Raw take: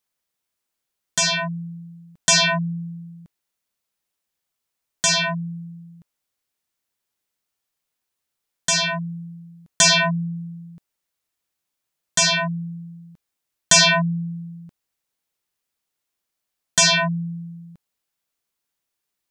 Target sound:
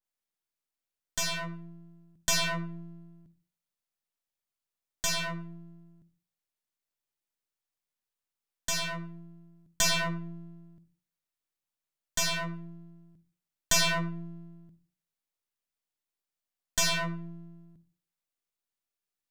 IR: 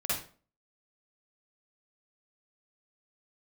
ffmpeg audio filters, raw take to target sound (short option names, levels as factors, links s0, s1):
-filter_complex "[0:a]aeval=exprs='if(lt(val(0),0),0.251*val(0),val(0))':c=same,asplit=2[s0][s1];[1:a]atrim=start_sample=2205,highshelf=f=4700:g=-8.5[s2];[s1][s2]afir=irnorm=-1:irlink=0,volume=0.133[s3];[s0][s3]amix=inputs=2:normalize=0,adynamicequalizer=threshold=0.0224:dfrequency=2200:dqfactor=0.7:tfrequency=2200:tqfactor=0.7:attack=5:release=100:ratio=0.375:range=2.5:mode=cutabove:tftype=highshelf,volume=0.398"